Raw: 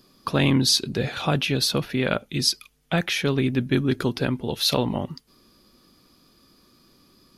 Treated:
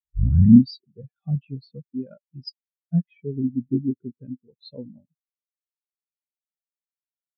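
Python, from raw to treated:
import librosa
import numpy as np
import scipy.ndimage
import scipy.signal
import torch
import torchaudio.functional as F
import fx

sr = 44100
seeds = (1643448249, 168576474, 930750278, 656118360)

y = fx.tape_start_head(x, sr, length_s=0.63)
y = fx.spectral_expand(y, sr, expansion=4.0)
y = y * librosa.db_to_amplitude(5.5)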